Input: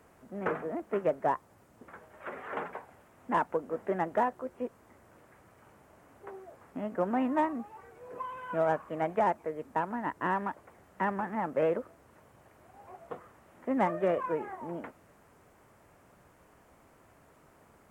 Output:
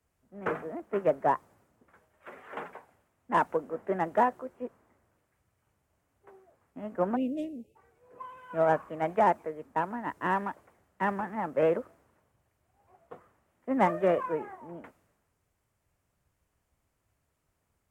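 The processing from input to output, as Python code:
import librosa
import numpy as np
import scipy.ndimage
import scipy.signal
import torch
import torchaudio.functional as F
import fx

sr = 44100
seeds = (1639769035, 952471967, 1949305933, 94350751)

y = fx.ellip_bandstop(x, sr, low_hz=550.0, high_hz=2700.0, order=3, stop_db=40, at=(7.15, 7.75), fade=0.02)
y = fx.band_widen(y, sr, depth_pct=70)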